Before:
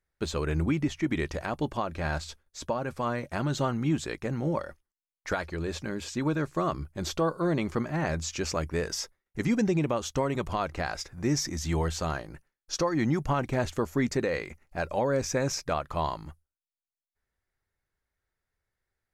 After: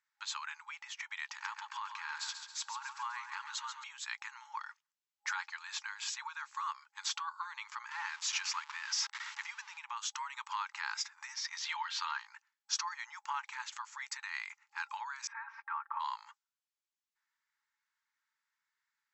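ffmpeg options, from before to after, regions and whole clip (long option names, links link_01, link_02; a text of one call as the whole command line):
ffmpeg -i in.wav -filter_complex "[0:a]asettb=1/sr,asplit=3[link_01][link_02][link_03];[link_01]atrim=end=1.254[link_04];[link_02]atrim=start=1.25:end=3.84,asetpts=PTS-STARTPTS,afade=type=in:duration=0.004:curve=qsin,afade=type=out:start_time=2.586:duration=0.004:curve=qsin,acompressor=threshold=-33dB:ratio=5:attack=3.2:release=140:knee=1:detection=peak,aecho=1:1:137|274|411|548|685|822:0.398|0.195|0.0956|0.0468|0.023|0.0112,atrim=end_sample=114219[link_05];[link_03]atrim=start=3.836[link_06];[link_04][link_05]acrossfade=duration=0.004:curve1=hsin:curve2=qsin[link_07];[link_07][link_06]acrossfade=duration=0.004:curve1=qsin:curve2=hsin,asettb=1/sr,asplit=3[link_08][link_09][link_10];[link_08]atrim=end=7.914[link_11];[link_09]atrim=start=7.91:end=9.78,asetpts=PTS-STARTPTS,afade=type=in:duration=0.004:curve=qsin,afade=type=out:start_time=1.866:duration=0.004:curve=qsin,aeval=exprs='val(0)+0.5*0.02*sgn(val(0))':channel_layout=same,lowpass=6000[link_12];[link_10]atrim=start=9.776[link_13];[link_11][link_12]acrossfade=duration=0.004:curve1=hsin:curve2=qsin[link_14];[link_14][link_13]acrossfade=duration=0.004:curve1=qsin:curve2=hsin,asettb=1/sr,asplit=3[link_15][link_16][link_17];[link_15]atrim=end=11.344[link_18];[link_16]atrim=start=11.34:end=12.18,asetpts=PTS-STARTPTS,afade=type=in:duration=0.004:curve=qsin,afade=type=out:start_time=0.836:duration=0.004:curve=qsin,highpass=330,highshelf=frequency=5700:width_type=q:width=1.5:gain=-11,aecho=1:1:4.3:0.33,atrim=end_sample=37044[link_19];[link_17]atrim=start=12.176[link_20];[link_18][link_19]acrossfade=duration=0.004:curve1=hsin:curve2=qsin[link_21];[link_21][link_20]acrossfade=duration=0.004:curve1=qsin:curve2=hsin,asettb=1/sr,asplit=3[link_22][link_23][link_24];[link_22]atrim=end=15.274[link_25];[link_23]atrim=start=15.27:end=16,asetpts=PTS-STARTPTS,afade=type=in:duration=0.004:curve=qsin,afade=type=out:start_time=0.726:duration=0.004:curve=qsin,lowpass=frequency=1700:width=0.5412,lowpass=frequency=1700:width=1.3066,aecho=1:1:4.4:1,atrim=end_sample=32193[link_26];[link_24]atrim=start=15.996[link_27];[link_25][link_26]acrossfade=duration=0.004:curve1=hsin:curve2=qsin[link_28];[link_28][link_27]acrossfade=duration=0.004:curve1=qsin:curve2=hsin,acompressor=threshold=-31dB:ratio=6,afftfilt=real='re*between(b*sr/4096,820,7900)':imag='im*between(b*sr/4096,820,7900)':win_size=4096:overlap=0.75,volume=2dB" out.wav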